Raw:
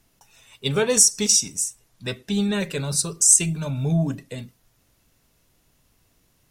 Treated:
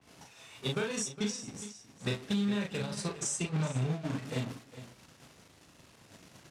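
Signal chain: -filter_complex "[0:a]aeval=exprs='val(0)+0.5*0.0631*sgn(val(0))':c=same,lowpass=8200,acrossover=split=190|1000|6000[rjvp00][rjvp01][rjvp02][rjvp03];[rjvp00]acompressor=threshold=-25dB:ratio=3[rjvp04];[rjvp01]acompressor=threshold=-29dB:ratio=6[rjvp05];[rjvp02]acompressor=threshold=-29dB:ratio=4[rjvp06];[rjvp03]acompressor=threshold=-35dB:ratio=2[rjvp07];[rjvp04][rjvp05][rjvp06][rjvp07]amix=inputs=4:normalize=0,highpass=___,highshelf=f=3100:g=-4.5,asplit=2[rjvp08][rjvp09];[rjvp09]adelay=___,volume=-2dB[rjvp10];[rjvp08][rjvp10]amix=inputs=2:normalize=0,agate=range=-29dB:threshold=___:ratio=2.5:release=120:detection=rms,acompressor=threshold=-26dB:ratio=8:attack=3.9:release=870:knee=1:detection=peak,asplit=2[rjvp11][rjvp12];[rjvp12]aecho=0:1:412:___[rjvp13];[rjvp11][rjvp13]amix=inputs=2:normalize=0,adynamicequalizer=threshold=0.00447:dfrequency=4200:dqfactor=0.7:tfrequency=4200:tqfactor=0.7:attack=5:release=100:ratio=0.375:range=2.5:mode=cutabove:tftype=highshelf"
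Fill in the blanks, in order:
110, 39, -21dB, 0.2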